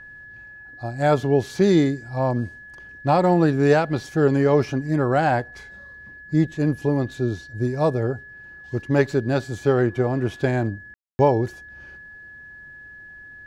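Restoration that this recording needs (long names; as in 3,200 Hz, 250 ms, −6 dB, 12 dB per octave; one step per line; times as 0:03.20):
notch filter 1,700 Hz, Q 30
ambience match 0:10.94–0:11.19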